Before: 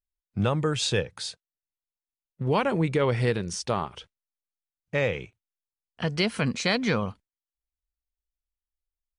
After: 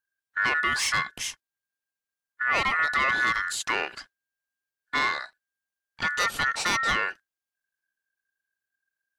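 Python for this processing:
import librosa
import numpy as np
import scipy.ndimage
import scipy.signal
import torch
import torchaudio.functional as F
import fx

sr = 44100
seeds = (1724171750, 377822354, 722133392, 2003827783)

y = 10.0 ** (-22.5 / 20.0) * np.tanh(x / 10.0 ** (-22.5 / 20.0))
y = y * np.sin(2.0 * np.pi * 1600.0 * np.arange(len(y)) / sr)
y = F.gain(torch.from_numpy(y), 6.0).numpy()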